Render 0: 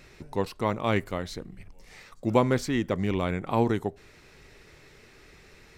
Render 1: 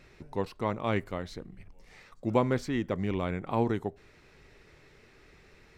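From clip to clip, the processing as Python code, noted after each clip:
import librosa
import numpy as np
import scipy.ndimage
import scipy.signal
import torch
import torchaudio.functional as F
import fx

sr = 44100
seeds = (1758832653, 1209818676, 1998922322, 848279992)

y = fx.high_shelf(x, sr, hz=4900.0, db=-8.0)
y = F.gain(torch.from_numpy(y), -3.5).numpy()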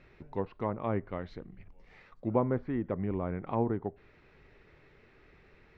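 y = fx.env_lowpass_down(x, sr, base_hz=1200.0, full_db=-26.0)
y = scipy.signal.sosfilt(scipy.signal.butter(2, 2900.0, 'lowpass', fs=sr, output='sos'), y)
y = F.gain(torch.from_numpy(y), -2.0).numpy()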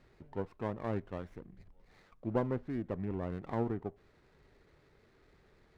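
y = fx.running_max(x, sr, window=9)
y = F.gain(torch.from_numpy(y), -4.5).numpy()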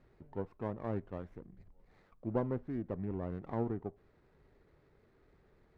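y = fx.high_shelf(x, sr, hz=2100.0, db=-10.5)
y = F.gain(torch.from_numpy(y), -1.0).numpy()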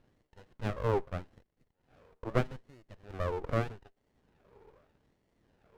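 y = fx.filter_lfo_highpass(x, sr, shape='sine', hz=0.81, low_hz=430.0, high_hz=2600.0, q=5.3)
y = fx.running_max(y, sr, window=33)
y = F.gain(torch.from_numpy(y), 4.0).numpy()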